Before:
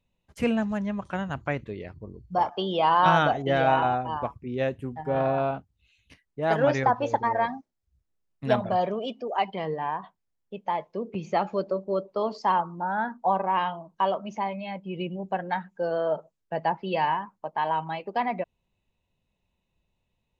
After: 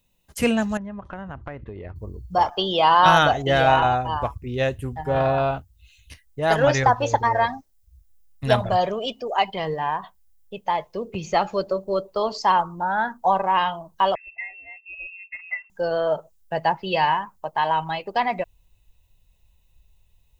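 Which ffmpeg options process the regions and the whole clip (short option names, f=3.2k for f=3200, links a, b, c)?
-filter_complex "[0:a]asettb=1/sr,asplit=3[a][b][c];[a]atrim=end=0.774[d];[b]atrim=start=0.77:end=1.96,asetpts=PTS-STARTPTS,afade=t=in:d=0.004:c=qsin,afade=t=out:st=1.186:d=0.004:c=qsin,lowpass=1.5k,acompressor=threshold=-35dB:ratio=6:attack=3.2:release=140:knee=1:detection=peak[e];[c]atrim=start=1.956[f];[d][e]acrossfade=d=0.004:c1=hsin:c2=qsin[g];[g][f]acrossfade=d=0.004:c1=qsin:c2=hsin,asettb=1/sr,asplit=3[h][i][j];[h]atrim=end=14.154[k];[i]atrim=start=14.15:end=15.7,asetpts=PTS-STARTPTS,afade=t=in:d=0.004:c=qsin,afade=t=out:st=1.546:d=0.004:c=qsin,asplit=3[l][m][n];[l]bandpass=f=300:t=q:w=8,volume=0dB[o];[m]bandpass=f=870:t=q:w=8,volume=-6dB[p];[n]bandpass=f=2.24k:t=q:w=8,volume=-9dB[q];[o][p][q]amix=inputs=3:normalize=0,lowpass=f=2.5k:t=q:w=0.5098,lowpass=f=2.5k:t=q:w=0.6013,lowpass=f=2.5k:t=q:w=0.9,lowpass=f=2.5k:t=q:w=2.563,afreqshift=-2900[r];[j]atrim=start=15.696[s];[k][r]acrossfade=d=0.004:c1=hsin:c2=qsin[t];[t][s]acrossfade=d=0.004:c1=qsin:c2=hsin,aemphasis=mode=production:type=75kf,bandreject=f=2.3k:w=19,asubboost=boost=9:cutoff=69,volume=4.5dB"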